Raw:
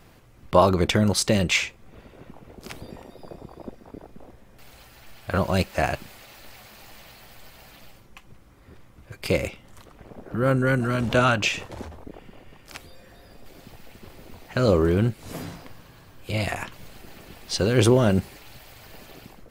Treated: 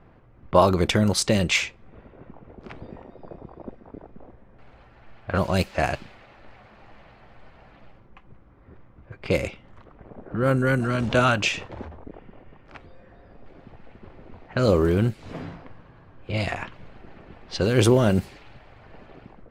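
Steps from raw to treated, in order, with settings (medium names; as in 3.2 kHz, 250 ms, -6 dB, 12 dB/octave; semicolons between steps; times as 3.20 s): level-controlled noise filter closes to 1.5 kHz, open at -17 dBFS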